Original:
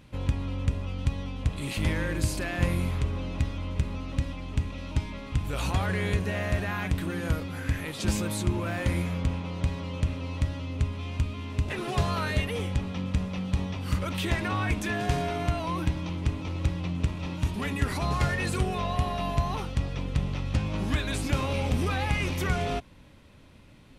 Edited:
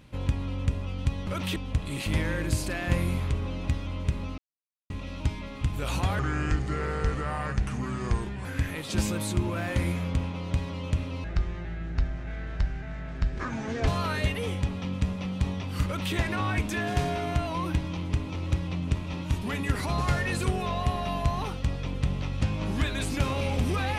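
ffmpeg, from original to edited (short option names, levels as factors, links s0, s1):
-filter_complex "[0:a]asplit=9[s0][s1][s2][s3][s4][s5][s6][s7][s8];[s0]atrim=end=1.272[s9];[s1]atrim=start=13.978:end=14.272[s10];[s2]atrim=start=1.268:end=4.09,asetpts=PTS-STARTPTS,afade=t=out:st=2.818:d=0.004:c=hsin[s11];[s3]atrim=start=4.09:end=4.61,asetpts=PTS-STARTPTS,volume=0[s12];[s4]atrim=start=4.61:end=5.904,asetpts=PTS-STARTPTS,afade=t=in:d=0.004:c=hsin[s13];[s5]atrim=start=5.9:end=7.55,asetpts=PTS-STARTPTS,asetrate=32193,aresample=44100,atrim=end_sample=99678,asetpts=PTS-STARTPTS[s14];[s6]atrim=start=7.546:end=10.344[s15];[s7]atrim=start=10.34:end=12,asetpts=PTS-STARTPTS,asetrate=27783,aresample=44100[s16];[s8]atrim=start=11.996[s17];[s9][s10]acrossfade=d=0.004:c1=hsin:c2=hsin[s18];[s11][s12][s13]concat=n=3:v=0:a=1[s19];[s18][s19]acrossfade=d=0.004:c1=hsin:c2=hsin[s20];[s20][s14]acrossfade=d=0.004:c1=hsin:c2=hsin[s21];[s21][s15]acrossfade=d=0.004:c1=hsin:c2=hsin[s22];[s22][s16]acrossfade=d=0.004:c1=hsin:c2=hsin[s23];[s23][s17]acrossfade=d=0.004:c1=hsin:c2=hsin"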